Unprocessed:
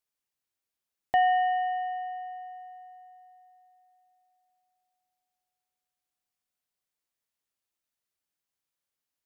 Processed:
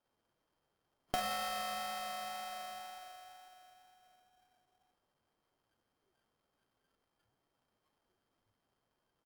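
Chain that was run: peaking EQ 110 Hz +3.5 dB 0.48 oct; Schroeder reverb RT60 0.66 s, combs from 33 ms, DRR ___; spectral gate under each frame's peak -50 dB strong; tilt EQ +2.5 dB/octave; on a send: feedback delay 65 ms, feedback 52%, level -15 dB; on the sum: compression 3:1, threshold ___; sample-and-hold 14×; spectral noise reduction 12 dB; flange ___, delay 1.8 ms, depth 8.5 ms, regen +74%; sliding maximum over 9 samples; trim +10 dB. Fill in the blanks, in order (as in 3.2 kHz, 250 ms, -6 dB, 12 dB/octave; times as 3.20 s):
-1 dB, -46 dBFS, 2 Hz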